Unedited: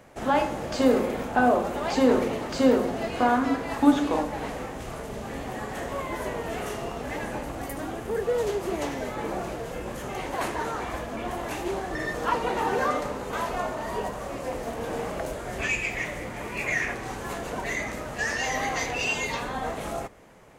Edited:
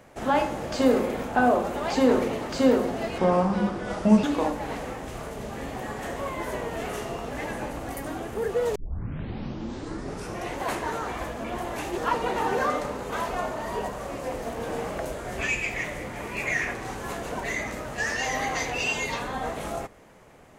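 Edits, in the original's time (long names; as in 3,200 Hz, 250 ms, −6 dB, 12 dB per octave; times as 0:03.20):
0:03.18–0:03.96: play speed 74%
0:08.48: tape start 1.83 s
0:11.70–0:12.18: remove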